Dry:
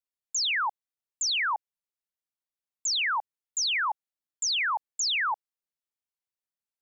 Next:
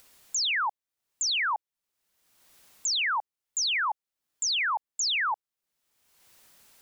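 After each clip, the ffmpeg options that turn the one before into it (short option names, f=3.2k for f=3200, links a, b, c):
-af "acompressor=mode=upward:threshold=-32dB:ratio=2.5"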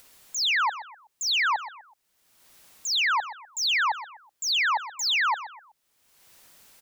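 -filter_complex "[0:a]acrossover=split=760|5000[a][b][c];[c]asoftclip=type=tanh:threshold=-37dB[d];[a][b][d]amix=inputs=3:normalize=0,aecho=1:1:125|250|375:0.211|0.074|0.0259,volume=3.5dB"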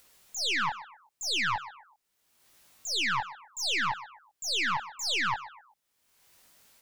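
-af "flanger=delay=17.5:depth=7:speed=0.73,aeval=exprs='0.126*(cos(1*acos(clip(val(0)/0.126,-1,1)))-cos(1*PI/2))+0.0447*(cos(2*acos(clip(val(0)/0.126,-1,1)))-cos(2*PI/2))':c=same,volume=-2.5dB"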